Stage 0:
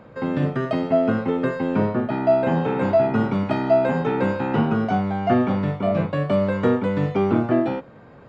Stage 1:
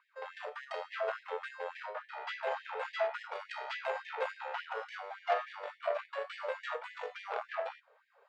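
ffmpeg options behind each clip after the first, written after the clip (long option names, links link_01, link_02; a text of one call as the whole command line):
ffmpeg -i in.wav -af "aeval=exprs='0.501*(cos(1*acos(clip(val(0)/0.501,-1,1)))-cos(1*PI/2))+0.0398*(cos(7*acos(clip(val(0)/0.501,-1,1)))-cos(7*PI/2))':channel_layout=same,afftfilt=real='re*gte(b*sr/1024,390*pow(1700/390,0.5+0.5*sin(2*PI*3.5*pts/sr)))':imag='im*gte(b*sr/1024,390*pow(1700/390,0.5+0.5*sin(2*PI*3.5*pts/sr)))':win_size=1024:overlap=0.75,volume=-7.5dB" out.wav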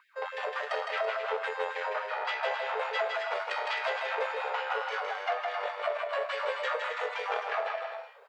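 ffmpeg -i in.wav -filter_complex "[0:a]acompressor=threshold=-37dB:ratio=6,asplit=2[link_01][link_02];[link_02]aecho=0:1:160|264|331.6|375.5|404.1:0.631|0.398|0.251|0.158|0.1[link_03];[link_01][link_03]amix=inputs=2:normalize=0,volume=8.5dB" out.wav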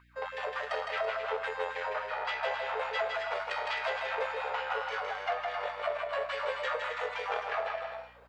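ffmpeg -i in.wav -af "aeval=exprs='val(0)+0.000891*(sin(2*PI*60*n/s)+sin(2*PI*2*60*n/s)/2+sin(2*PI*3*60*n/s)/3+sin(2*PI*4*60*n/s)/4+sin(2*PI*5*60*n/s)/5)':channel_layout=same,volume=-1.5dB" out.wav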